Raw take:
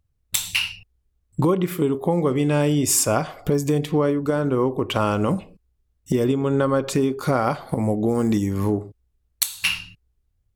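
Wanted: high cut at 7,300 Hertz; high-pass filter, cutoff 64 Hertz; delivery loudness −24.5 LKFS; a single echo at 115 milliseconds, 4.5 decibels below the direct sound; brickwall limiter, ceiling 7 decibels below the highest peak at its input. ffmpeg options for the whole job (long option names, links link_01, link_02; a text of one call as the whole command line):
ffmpeg -i in.wav -af "highpass=64,lowpass=7300,alimiter=limit=-11.5dB:level=0:latency=1,aecho=1:1:115:0.596,volume=-2dB" out.wav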